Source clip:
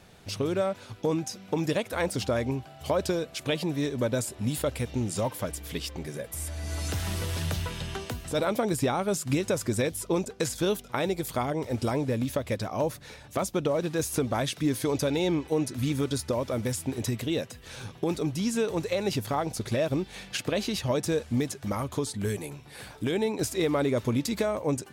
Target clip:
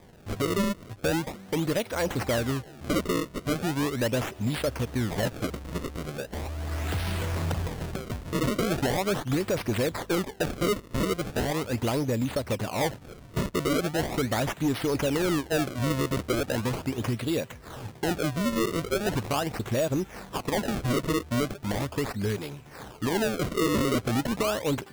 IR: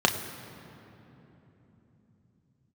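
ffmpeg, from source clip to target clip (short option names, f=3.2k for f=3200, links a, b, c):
-af "acrusher=samples=31:mix=1:aa=0.000001:lfo=1:lforange=49.6:lforate=0.39,asoftclip=type=hard:threshold=-22dB,volume=1.5dB"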